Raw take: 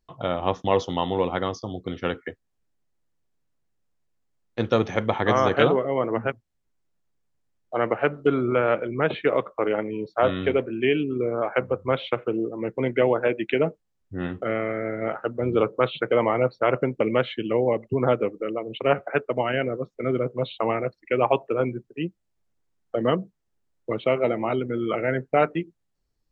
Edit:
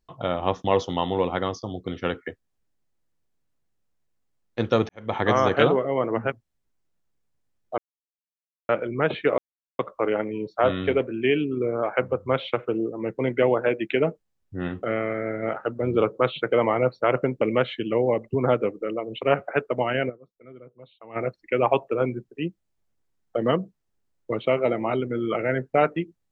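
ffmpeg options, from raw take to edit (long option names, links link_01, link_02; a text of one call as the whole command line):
ffmpeg -i in.wav -filter_complex "[0:a]asplit=7[link_01][link_02][link_03][link_04][link_05][link_06][link_07];[link_01]atrim=end=4.89,asetpts=PTS-STARTPTS,afade=type=out:start_time=4.886:duration=0.004:curve=hsin[link_08];[link_02]atrim=start=4.89:end=7.78,asetpts=PTS-STARTPTS,afade=type=in:duration=0.27:curve=qua,afade=type=out:start_time=2.886:duration=0.004:curve=hsin[link_09];[link_03]atrim=start=7.78:end=8.69,asetpts=PTS-STARTPTS,volume=0[link_10];[link_04]atrim=start=8.69:end=9.38,asetpts=PTS-STARTPTS,afade=type=in:duration=0.004:curve=hsin,afade=type=out:start_time=0.686:duration=0.004:curve=hsin,apad=pad_dur=0.41[link_11];[link_05]atrim=start=9.38:end=19.84,asetpts=PTS-STARTPTS,afade=type=in:duration=0.004:curve=hsin,afade=type=out:start_time=10.3:duration=0.16:curve=exp:silence=0.0891251[link_12];[link_06]atrim=start=19.84:end=20.6,asetpts=PTS-STARTPTS,volume=-21dB[link_13];[link_07]atrim=start=20.6,asetpts=PTS-STARTPTS,afade=type=in:duration=0.16:curve=exp:silence=0.0891251[link_14];[link_08][link_09][link_10][link_11][link_12][link_13][link_14]concat=n=7:v=0:a=1" out.wav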